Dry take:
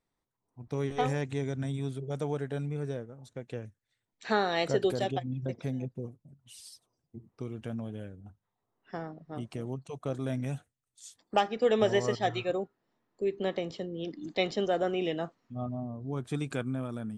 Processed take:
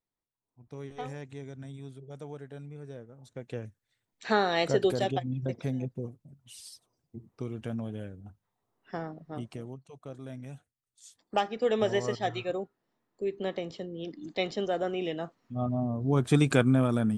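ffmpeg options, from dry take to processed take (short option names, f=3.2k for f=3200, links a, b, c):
-af "volume=21.5dB,afade=t=in:st=2.87:d=0.77:silence=0.266073,afade=t=out:st=9.26:d=0.55:silence=0.281838,afade=t=in:st=10.56:d=0.82:silence=0.421697,afade=t=in:st=15.25:d=1.05:silence=0.251189"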